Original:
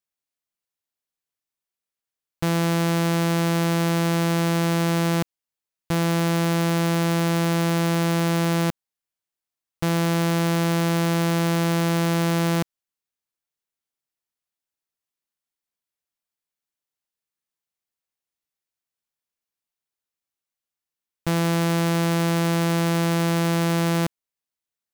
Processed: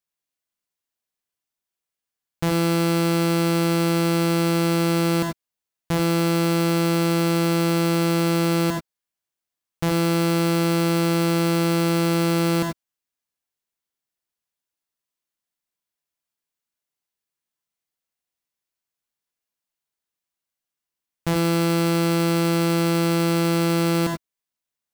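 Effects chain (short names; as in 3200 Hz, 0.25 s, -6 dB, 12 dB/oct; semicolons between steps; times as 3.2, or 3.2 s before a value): non-linear reverb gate 0.11 s rising, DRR 3 dB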